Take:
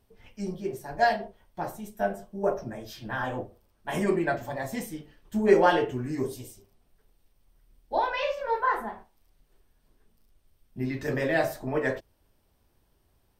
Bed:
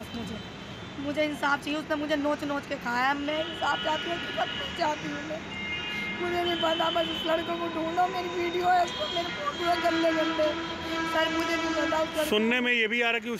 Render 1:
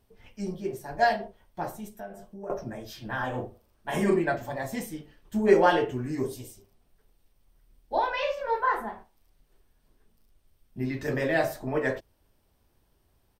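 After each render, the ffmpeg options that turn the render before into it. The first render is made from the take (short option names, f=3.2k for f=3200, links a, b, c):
-filter_complex "[0:a]asettb=1/sr,asplit=3[a][b][c];[a]atrim=end=1.884[d];[b]atrim=start=1.88:end=2.5,asetpts=PTS-STARTPTS,afade=t=in:d=0.004:c=qsin,afade=t=out:st=0.616:d=0.004:c=qsin,acompressor=threshold=-42dB:ratio=2.5:attack=3.2:release=140:knee=1:detection=peak[e];[c]atrim=start=2.496[f];[d][e]acrossfade=d=0.004:c1=hsin:c2=qsin[g];[g][f]acrossfade=d=0.004:c1=qsin:c2=hsin,asplit=3[h][i][j];[h]afade=t=out:st=3.33:d=0.02[k];[i]asplit=2[l][m];[m]adelay=40,volume=-6dB[n];[l][n]amix=inputs=2:normalize=0,afade=t=in:st=3.33:d=0.02,afade=t=out:st=4.2:d=0.02[o];[j]afade=t=in:st=4.2:d=0.02[p];[k][o][p]amix=inputs=3:normalize=0"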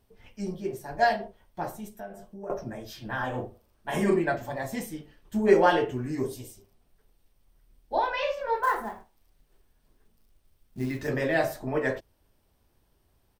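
-filter_complex "[0:a]asettb=1/sr,asplit=3[a][b][c];[a]atrim=end=8.634[d];[b]atrim=start=8.63:end=11.08,asetpts=PTS-STARTPTS,afade=t=in:d=0.004:c=qsin,afade=t=out:st=2.446:d=0.004:c=qsin,acrusher=bits=6:mode=log:mix=0:aa=0.000001[e];[c]atrim=start=11.076[f];[d][e]acrossfade=d=0.004:c1=hsin:c2=qsin[g];[g][f]acrossfade=d=0.004:c1=qsin:c2=hsin"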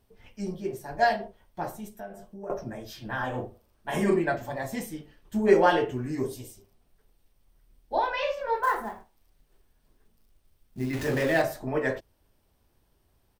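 -filter_complex "[0:a]asettb=1/sr,asplit=3[a][b][c];[a]atrim=end=10.934[d];[b]atrim=start=10.93:end=11.42,asetpts=PTS-STARTPTS,afade=t=in:d=0.004:c=qsin,afade=t=out:st=0.486:d=0.004:c=qsin,aeval=exprs='val(0)+0.5*0.0251*sgn(val(0))':c=same[e];[c]atrim=start=11.416[f];[d][e]acrossfade=d=0.004:c1=hsin:c2=qsin[g];[g][f]acrossfade=d=0.004:c1=qsin:c2=hsin"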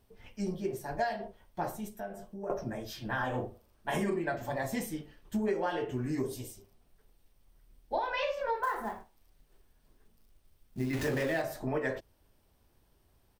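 -af "acompressor=threshold=-28dB:ratio=10"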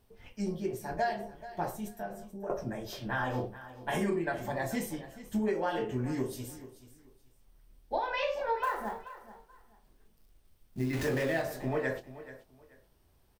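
-filter_complex "[0:a]asplit=2[a][b];[b]adelay=24,volume=-11dB[c];[a][c]amix=inputs=2:normalize=0,aecho=1:1:432|864:0.168|0.0386"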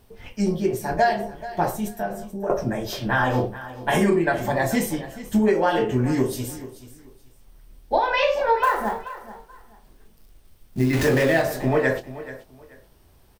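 -af "volume=11.5dB"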